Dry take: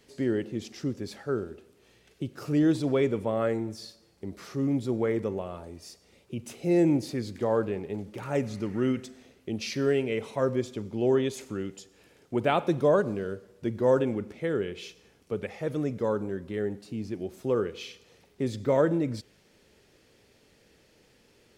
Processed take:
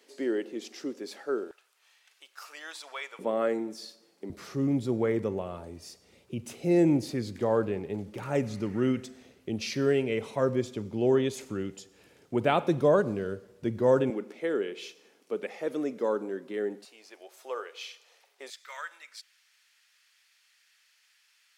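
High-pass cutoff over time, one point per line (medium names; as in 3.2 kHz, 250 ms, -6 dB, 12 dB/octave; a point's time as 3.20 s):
high-pass 24 dB/octave
290 Hz
from 1.51 s 900 Hz
from 3.19 s 220 Hz
from 4.30 s 62 Hz
from 14.10 s 250 Hz
from 16.85 s 620 Hz
from 18.50 s 1.3 kHz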